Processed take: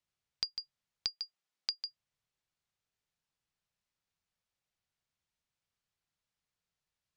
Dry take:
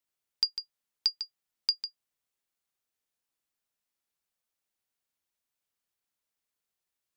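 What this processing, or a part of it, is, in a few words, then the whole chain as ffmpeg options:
jukebox: -filter_complex "[0:a]asettb=1/sr,asplit=3[a][b][c];[a]atrim=end=1.084[d];[b]atrim=start=1.08:end=1.86,asetpts=PTS-STARTPTS,afade=t=in:d=0.004:c=qsin,afade=t=out:st=0.776:d=0.004:c=qsin,highpass=260[e];[c]atrim=start=1.856[f];[d][e]acrossfade=d=0.004:c1=hsin:c2=qsin[g];[g][f]acrossfade=d=0.004:c1=qsin:c2=hsin,lowpass=6.3k,lowshelf=f=200:t=q:w=1.5:g=7.5,acompressor=threshold=-32dB:ratio=6"

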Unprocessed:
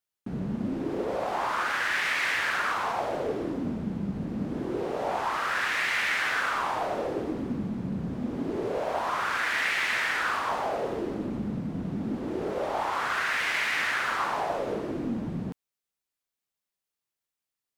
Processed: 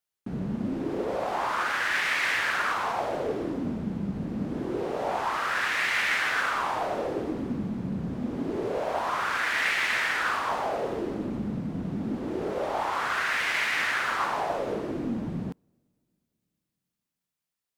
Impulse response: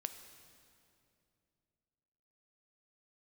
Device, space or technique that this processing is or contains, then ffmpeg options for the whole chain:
keyed gated reverb: -filter_complex "[0:a]asplit=3[a][b][c];[1:a]atrim=start_sample=2205[d];[b][d]afir=irnorm=-1:irlink=0[e];[c]apad=whole_len=783758[f];[e][f]sidechaingate=range=-24dB:threshold=-24dB:ratio=16:detection=peak,volume=0dB[g];[a][g]amix=inputs=2:normalize=0"

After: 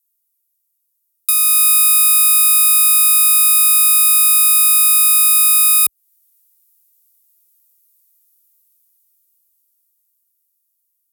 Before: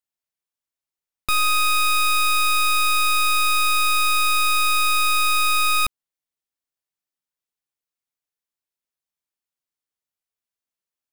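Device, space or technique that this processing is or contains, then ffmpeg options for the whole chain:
FM broadcast chain: -filter_complex "[0:a]highpass=46,dynaudnorm=f=490:g=11:m=15dB,acrossover=split=380|1800[a][b][c];[a]acompressor=threshold=-44dB:ratio=4[d];[b]acompressor=threshold=-22dB:ratio=4[e];[c]acompressor=threshold=-22dB:ratio=4[f];[d][e][f]amix=inputs=3:normalize=0,aemphasis=mode=production:type=75fm,alimiter=limit=-2dB:level=0:latency=1:release=435,asoftclip=type=hard:threshold=-5.5dB,lowpass=f=15k:w=0.5412,lowpass=f=15k:w=1.3066,aemphasis=mode=production:type=75fm,volume=-9dB"

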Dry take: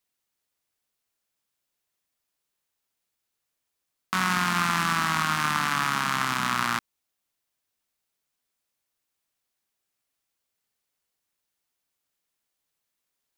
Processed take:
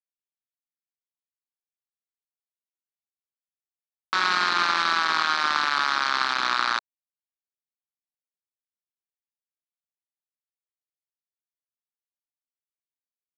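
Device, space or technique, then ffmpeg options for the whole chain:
hand-held game console: -af "acrusher=bits=3:mix=0:aa=0.000001,highpass=450,equalizer=f=470:t=q:w=4:g=-9,equalizer=f=680:t=q:w=4:g=-6,equalizer=f=990:t=q:w=4:g=-4,equalizer=f=2k:t=q:w=4:g=-5,equalizer=f=2.8k:t=q:w=4:g=-8,equalizer=f=4.2k:t=q:w=4:g=4,lowpass=f=4.5k:w=0.5412,lowpass=f=4.5k:w=1.3066,volume=5dB"

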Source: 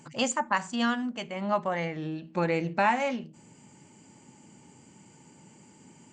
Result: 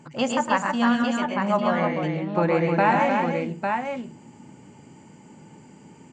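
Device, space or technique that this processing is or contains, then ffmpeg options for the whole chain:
through cloth: -af "highshelf=f=3.5k:g=-12,aecho=1:1:110|136|307|852:0.398|0.562|0.531|0.562,volume=4.5dB"

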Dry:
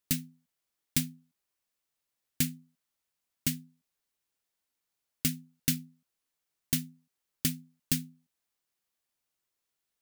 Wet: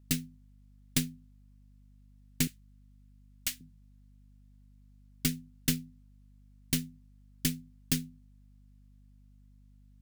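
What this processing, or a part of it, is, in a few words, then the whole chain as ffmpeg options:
valve amplifier with mains hum: -filter_complex "[0:a]asettb=1/sr,asplit=3[a][b][c];[a]atrim=end=2.474[d];[b]atrim=start=2.47:end=3.61,asetpts=PTS-STARTPTS,afade=t=in:d=0.004:c=qsin,afade=t=out:st=1.136:d=0.004:c=qsin,highpass=850[e];[c]atrim=start=3.606[f];[d][e]acrossfade=d=0.004:c1=hsin:c2=qsin[g];[g][f]acrossfade=d=0.004:c1=qsin:c2=hsin,highshelf=f=11k:g=-6,aeval=exprs='(tanh(6.31*val(0)+0.7)-tanh(0.7))/6.31':c=same,aeval=exprs='val(0)+0.000794*(sin(2*PI*50*n/s)+sin(2*PI*2*50*n/s)/2+sin(2*PI*3*50*n/s)/3+sin(2*PI*4*50*n/s)/4+sin(2*PI*5*50*n/s)/5)':c=same,volume=5dB"

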